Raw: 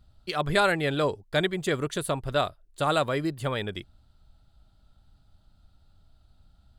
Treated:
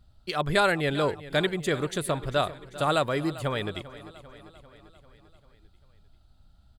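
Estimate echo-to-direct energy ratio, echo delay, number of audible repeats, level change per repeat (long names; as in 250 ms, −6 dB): −15.0 dB, 395 ms, 4, −4.5 dB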